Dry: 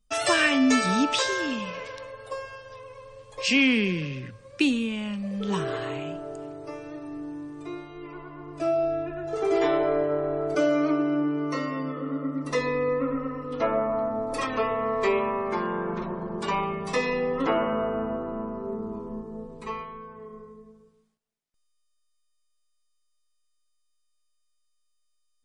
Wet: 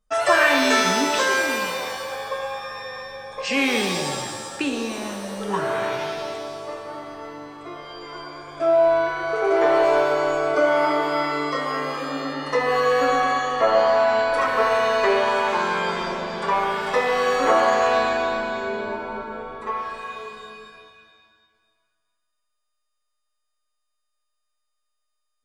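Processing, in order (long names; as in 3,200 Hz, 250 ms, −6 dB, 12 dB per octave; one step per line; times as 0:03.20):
flat-topped bell 920 Hz +10 dB 2.4 octaves
reverb with rising layers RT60 1.5 s, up +7 semitones, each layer −2 dB, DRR 4.5 dB
level −4 dB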